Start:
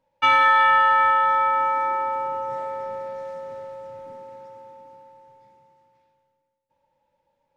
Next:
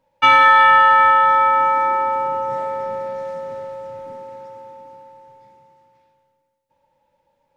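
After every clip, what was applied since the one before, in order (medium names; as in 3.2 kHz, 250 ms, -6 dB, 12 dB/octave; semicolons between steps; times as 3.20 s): dynamic bell 190 Hz, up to +4 dB, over -47 dBFS, Q 1.3; trim +5.5 dB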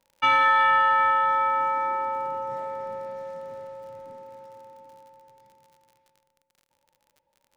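crackle 59 per s -37 dBFS; trim -8.5 dB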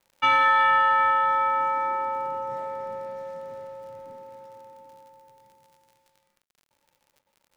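bit crusher 12-bit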